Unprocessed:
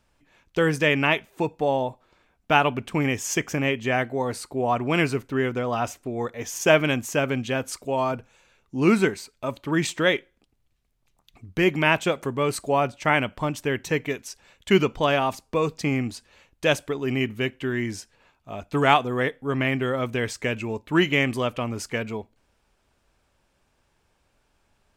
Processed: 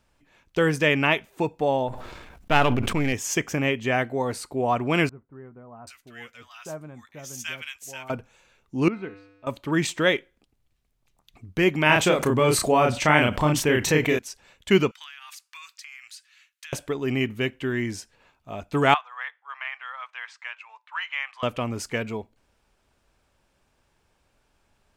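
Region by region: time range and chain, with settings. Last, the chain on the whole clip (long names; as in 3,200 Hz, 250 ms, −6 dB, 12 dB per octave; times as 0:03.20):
0:01.88–0:03.13: gain on one half-wave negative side −7 dB + low-shelf EQ 160 Hz +6.5 dB + level that may fall only so fast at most 33 dB per second
0:05.09–0:08.10: guitar amp tone stack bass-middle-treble 5-5-5 + double-tracking delay 13 ms −11 dB + multiband delay without the direct sound lows, highs 780 ms, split 1,100 Hz
0:08.88–0:09.47: high-frequency loss of the air 330 metres + tuned comb filter 99 Hz, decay 1.1 s, harmonics odd, mix 80%
0:11.86–0:14.19: double-tracking delay 33 ms −3.5 dB + envelope flattener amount 50%
0:14.91–0:16.73: inverse Chebyshev high-pass filter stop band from 570 Hz, stop band 50 dB + downward compressor 12 to 1, threshold −38 dBFS
0:18.94–0:21.43: Butterworth high-pass 940 Hz + head-to-tape spacing loss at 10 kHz 28 dB
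whole clip: no processing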